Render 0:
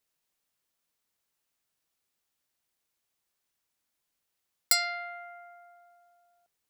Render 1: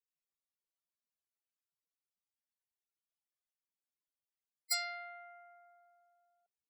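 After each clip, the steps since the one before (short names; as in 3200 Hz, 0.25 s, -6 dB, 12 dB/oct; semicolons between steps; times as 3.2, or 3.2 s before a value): loudest bins only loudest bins 32; gain -8.5 dB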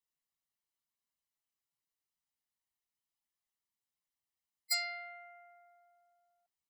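comb 1 ms, depth 49%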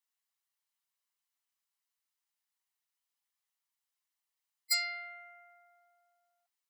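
HPF 790 Hz 24 dB/oct; gain +3 dB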